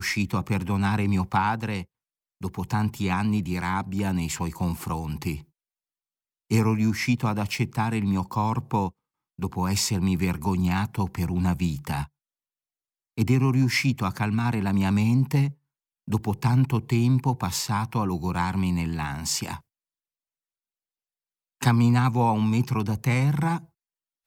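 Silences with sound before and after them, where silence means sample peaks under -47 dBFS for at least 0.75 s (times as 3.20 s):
5.44–6.50 s
12.06–13.18 s
19.60–21.61 s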